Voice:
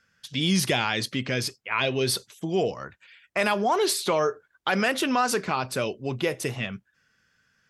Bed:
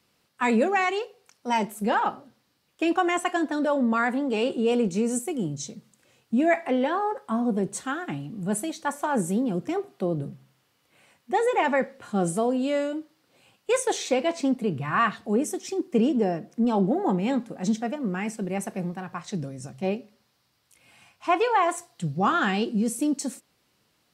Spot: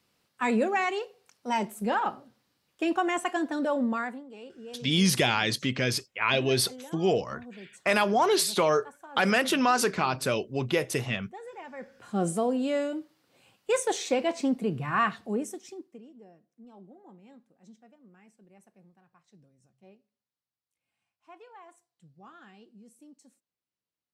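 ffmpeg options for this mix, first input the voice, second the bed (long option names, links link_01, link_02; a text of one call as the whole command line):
ffmpeg -i stem1.wav -i stem2.wav -filter_complex "[0:a]adelay=4500,volume=0dB[link_01];[1:a]volume=14.5dB,afade=type=out:start_time=3.83:duration=0.41:silence=0.141254,afade=type=in:start_time=11.76:duration=0.46:silence=0.125893,afade=type=out:start_time=14.99:duration=1:silence=0.0501187[link_02];[link_01][link_02]amix=inputs=2:normalize=0" out.wav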